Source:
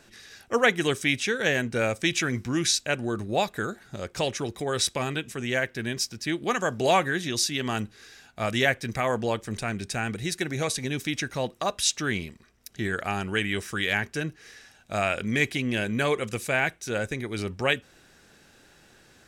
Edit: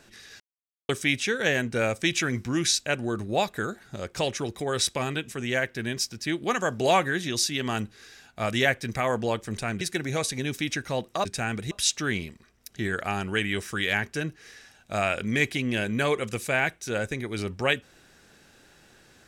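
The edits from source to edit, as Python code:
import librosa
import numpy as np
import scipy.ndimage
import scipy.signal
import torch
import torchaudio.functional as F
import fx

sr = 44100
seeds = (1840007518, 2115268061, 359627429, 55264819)

y = fx.edit(x, sr, fx.silence(start_s=0.4, length_s=0.49),
    fx.move(start_s=9.81, length_s=0.46, to_s=11.71), tone=tone)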